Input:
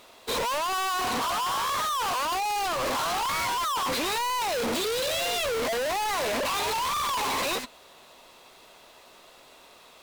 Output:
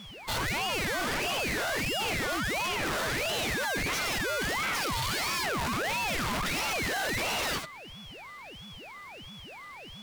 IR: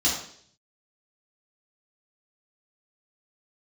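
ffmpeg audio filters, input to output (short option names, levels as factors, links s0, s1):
-af "aeval=exprs='val(0)+0.01*sin(2*PI*1600*n/s)':c=same,aeval=exprs='val(0)*sin(2*PI*1100*n/s+1100*0.65/1.5*sin(2*PI*1.5*n/s))':c=same"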